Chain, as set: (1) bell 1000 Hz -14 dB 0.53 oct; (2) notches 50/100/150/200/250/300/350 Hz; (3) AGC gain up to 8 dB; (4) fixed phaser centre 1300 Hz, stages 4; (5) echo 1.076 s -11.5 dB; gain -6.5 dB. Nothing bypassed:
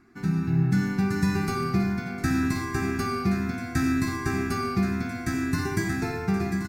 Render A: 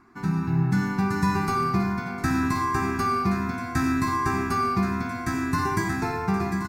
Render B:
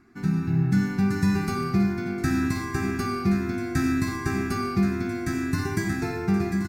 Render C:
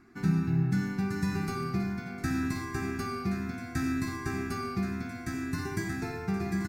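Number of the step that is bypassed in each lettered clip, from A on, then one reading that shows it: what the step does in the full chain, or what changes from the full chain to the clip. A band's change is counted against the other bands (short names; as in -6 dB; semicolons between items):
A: 1, 1 kHz band +8.0 dB; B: 2, 250 Hz band +2.0 dB; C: 3, crest factor change +2.0 dB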